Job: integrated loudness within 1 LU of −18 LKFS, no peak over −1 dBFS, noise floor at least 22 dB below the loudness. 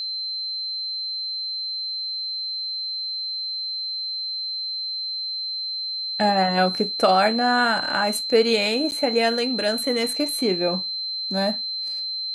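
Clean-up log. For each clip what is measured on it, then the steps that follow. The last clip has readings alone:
number of dropouts 1; longest dropout 9.6 ms; interfering tone 4,100 Hz; level of the tone −26 dBFS; integrated loudness −23.0 LKFS; sample peak −6.0 dBFS; target loudness −18.0 LKFS
→ repair the gap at 0:08.91, 9.6 ms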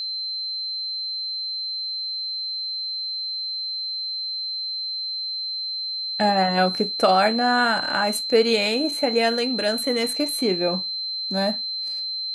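number of dropouts 0; interfering tone 4,100 Hz; level of the tone −26 dBFS
→ notch filter 4,100 Hz, Q 30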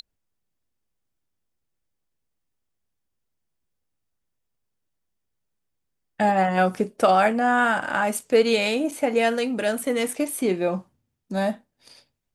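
interfering tone none found; integrated loudness −22.5 LKFS; sample peak −6.5 dBFS; target loudness −18.0 LKFS
→ level +4.5 dB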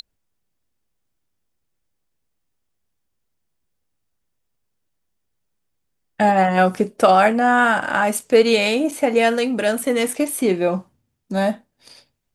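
integrated loudness −18.0 LKFS; sample peak −2.0 dBFS; background noise floor −74 dBFS

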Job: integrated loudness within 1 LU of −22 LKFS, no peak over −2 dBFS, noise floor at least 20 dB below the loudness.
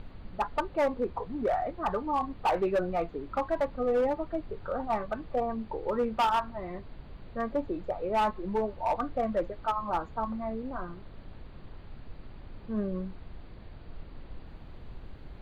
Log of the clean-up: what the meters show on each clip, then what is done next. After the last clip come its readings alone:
share of clipped samples 1.6%; peaks flattened at −22.0 dBFS; background noise floor −48 dBFS; target noise floor −52 dBFS; integrated loudness −31.5 LKFS; sample peak −22.0 dBFS; target loudness −22.0 LKFS
→ clipped peaks rebuilt −22 dBFS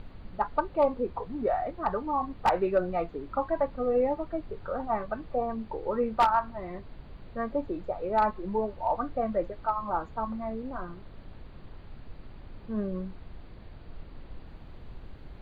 share of clipped samples 0.0%; background noise floor −48 dBFS; target noise floor −51 dBFS
→ noise reduction from a noise print 6 dB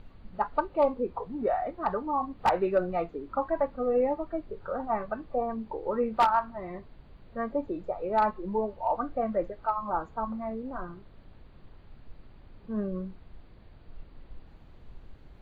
background noise floor −53 dBFS; integrated loudness −30.5 LKFS; sample peak −13.0 dBFS; target loudness −22.0 LKFS
→ level +8.5 dB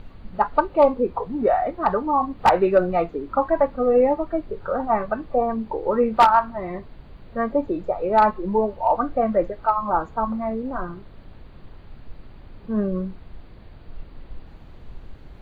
integrated loudness −22.0 LKFS; sample peak −4.5 dBFS; background noise floor −45 dBFS

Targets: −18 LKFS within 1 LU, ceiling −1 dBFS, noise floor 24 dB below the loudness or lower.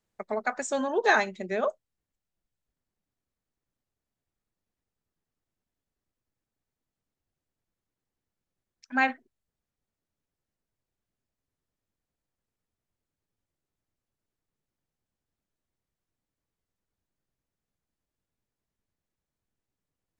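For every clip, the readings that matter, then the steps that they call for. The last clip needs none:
integrated loudness −28.0 LKFS; sample peak −9.5 dBFS; target loudness −18.0 LKFS
→ level +10 dB
brickwall limiter −1 dBFS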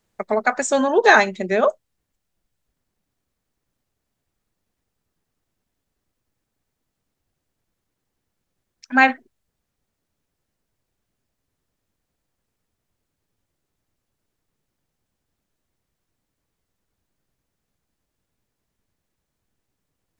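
integrated loudness −18.0 LKFS; sample peak −1.0 dBFS; background noise floor −80 dBFS

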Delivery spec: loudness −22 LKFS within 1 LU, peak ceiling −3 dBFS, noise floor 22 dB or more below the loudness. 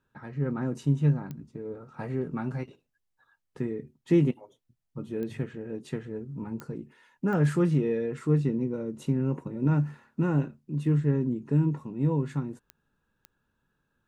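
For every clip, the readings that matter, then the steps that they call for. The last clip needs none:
number of clicks 6; integrated loudness −29.0 LKFS; sample peak −12.0 dBFS; target loudness −22.0 LKFS
→ click removal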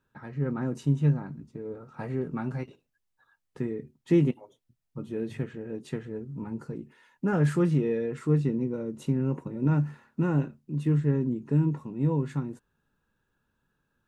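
number of clicks 0; integrated loudness −29.0 LKFS; sample peak −12.0 dBFS; target loudness −22.0 LKFS
→ level +7 dB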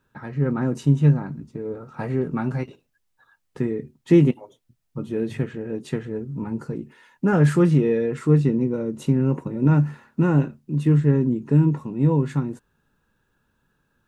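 integrated loudness −22.0 LKFS; sample peak −5.0 dBFS; background noise floor −72 dBFS

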